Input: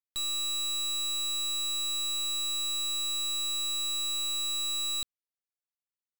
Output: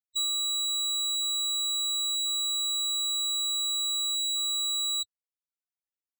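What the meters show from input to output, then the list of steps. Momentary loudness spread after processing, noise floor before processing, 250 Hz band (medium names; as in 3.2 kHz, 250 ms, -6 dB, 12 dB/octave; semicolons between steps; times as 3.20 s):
0 LU, under -85 dBFS, under -40 dB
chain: reverb removal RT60 0.54 s; loudest bins only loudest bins 16; high-pass 360 Hz 6 dB/octave; trim +5 dB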